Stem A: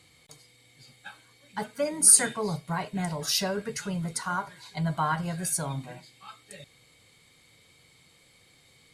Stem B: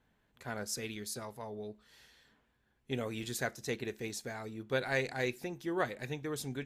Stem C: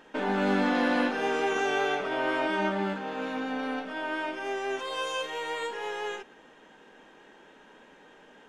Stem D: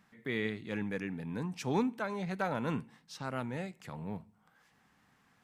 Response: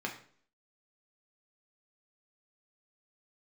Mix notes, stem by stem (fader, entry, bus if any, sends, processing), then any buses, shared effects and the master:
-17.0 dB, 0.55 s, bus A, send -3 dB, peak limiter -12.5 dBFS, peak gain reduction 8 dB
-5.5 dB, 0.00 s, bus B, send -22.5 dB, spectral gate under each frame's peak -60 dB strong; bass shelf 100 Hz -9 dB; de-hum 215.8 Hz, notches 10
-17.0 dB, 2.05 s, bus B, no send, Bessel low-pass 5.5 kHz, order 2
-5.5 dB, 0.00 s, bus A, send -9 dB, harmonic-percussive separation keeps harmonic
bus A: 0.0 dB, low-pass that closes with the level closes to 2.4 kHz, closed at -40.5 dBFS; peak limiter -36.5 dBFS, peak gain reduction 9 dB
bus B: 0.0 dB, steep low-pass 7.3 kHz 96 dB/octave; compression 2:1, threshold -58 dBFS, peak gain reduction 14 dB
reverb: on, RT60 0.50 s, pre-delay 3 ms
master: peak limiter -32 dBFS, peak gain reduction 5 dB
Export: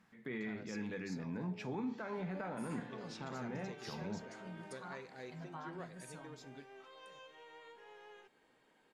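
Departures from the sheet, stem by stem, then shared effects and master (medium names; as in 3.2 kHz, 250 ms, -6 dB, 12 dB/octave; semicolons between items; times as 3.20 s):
stem A -17.0 dB -> -26.0 dB; stem D: missing harmonic-percussive separation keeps harmonic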